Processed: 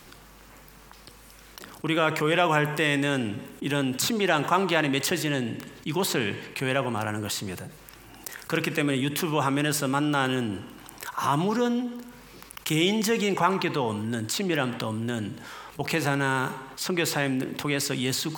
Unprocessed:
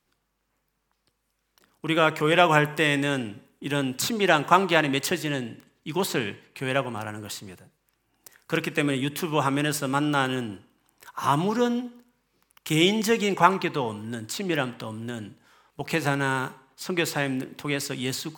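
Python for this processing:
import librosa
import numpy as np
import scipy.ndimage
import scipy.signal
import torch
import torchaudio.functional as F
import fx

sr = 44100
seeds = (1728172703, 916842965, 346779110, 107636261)

y = fx.env_flatten(x, sr, amount_pct=50)
y = y * librosa.db_to_amplitude(-6.0)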